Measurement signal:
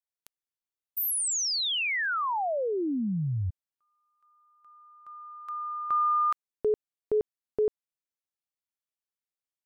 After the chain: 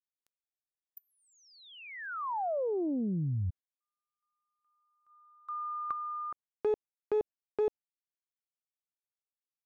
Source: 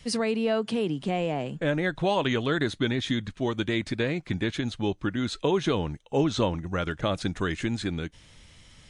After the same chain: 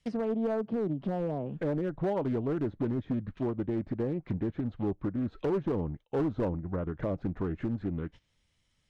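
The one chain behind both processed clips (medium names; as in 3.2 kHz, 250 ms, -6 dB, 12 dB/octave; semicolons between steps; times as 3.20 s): gate -43 dBFS, range -19 dB; low-pass that closes with the level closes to 680 Hz, closed at -25.5 dBFS; hard clipper -22 dBFS; loudspeaker Doppler distortion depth 0.36 ms; trim -2.5 dB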